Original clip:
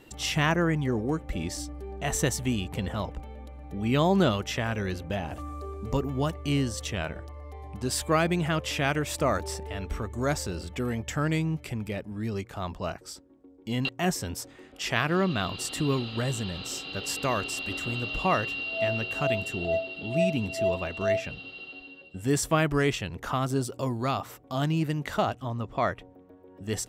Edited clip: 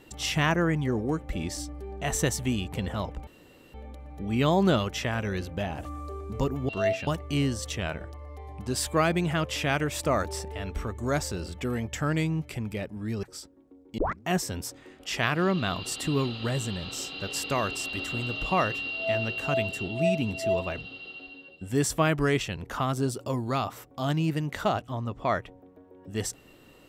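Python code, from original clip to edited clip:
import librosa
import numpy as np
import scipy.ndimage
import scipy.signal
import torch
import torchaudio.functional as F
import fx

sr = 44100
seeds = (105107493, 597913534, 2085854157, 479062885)

y = fx.edit(x, sr, fx.insert_room_tone(at_s=3.27, length_s=0.47),
    fx.cut(start_s=12.38, length_s=0.58),
    fx.tape_start(start_s=13.71, length_s=0.28),
    fx.cut(start_s=19.61, length_s=0.42),
    fx.move(start_s=20.93, length_s=0.38, to_s=6.22), tone=tone)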